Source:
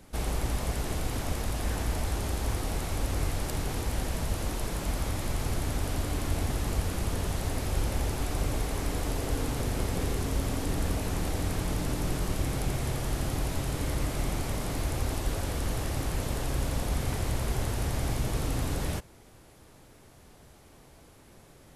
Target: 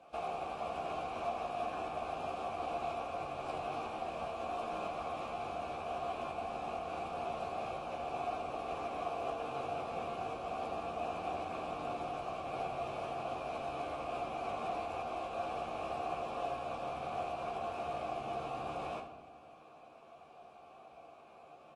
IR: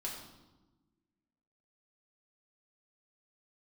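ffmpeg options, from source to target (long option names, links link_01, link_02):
-filter_complex "[0:a]acompressor=threshold=-30dB:ratio=5,asplit=3[link_01][link_02][link_03];[link_01]bandpass=frequency=730:width_type=q:width=8,volume=0dB[link_04];[link_02]bandpass=frequency=1090:width_type=q:width=8,volume=-6dB[link_05];[link_03]bandpass=frequency=2440:width_type=q:width=8,volume=-9dB[link_06];[link_04][link_05][link_06]amix=inputs=3:normalize=0,aecho=1:1:13|76:0.501|0.251,asplit=2[link_07][link_08];[1:a]atrim=start_sample=2205,asetrate=40131,aresample=44100,highshelf=frequency=5000:gain=-7[link_09];[link_08][link_09]afir=irnorm=-1:irlink=0,volume=-2dB[link_10];[link_07][link_10]amix=inputs=2:normalize=0,volume=6dB" -ar 24000 -c:a aac -b:a 32k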